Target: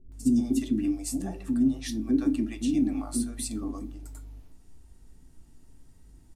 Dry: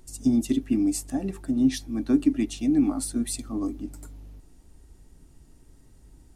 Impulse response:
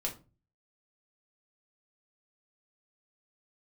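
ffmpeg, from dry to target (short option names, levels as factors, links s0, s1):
-filter_complex "[0:a]acrossover=split=470[s0][s1];[s1]adelay=120[s2];[s0][s2]amix=inputs=2:normalize=0,asplit=2[s3][s4];[1:a]atrim=start_sample=2205[s5];[s4][s5]afir=irnorm=-1:irlink=0,volume=0.562[s6];[s3][s6]amix=inputs=2:normalize=0,volume=0.473"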